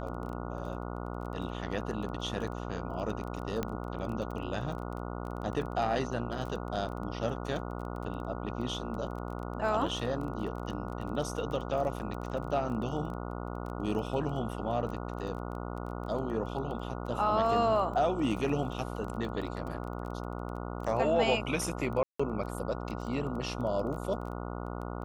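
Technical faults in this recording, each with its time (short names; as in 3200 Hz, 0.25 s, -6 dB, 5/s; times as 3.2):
buzz 60 Hz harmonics 24 -38 dBFS
crackle 15/s -38 dBFS
3.63 pop -18 dBFS
22.03–22.2 gap 0.165 s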